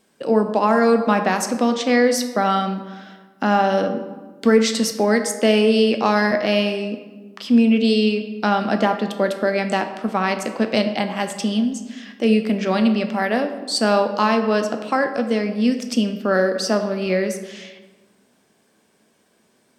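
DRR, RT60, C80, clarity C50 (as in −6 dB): 6.0 dB, 1.4 s, 10.5 dB, 9.0 dB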